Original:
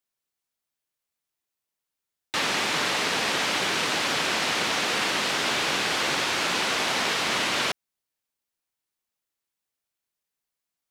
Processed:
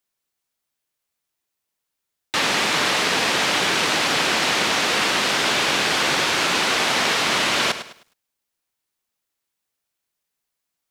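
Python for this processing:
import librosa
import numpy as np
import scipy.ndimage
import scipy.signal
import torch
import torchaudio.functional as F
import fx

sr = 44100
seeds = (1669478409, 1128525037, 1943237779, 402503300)

y = fx.echo_crushed(x, sr, ms=104, feedback_pct=35, bits=9, wet_db=-11.5)
y = F.gain(torch.from_numpy(y), 5.0).numpy()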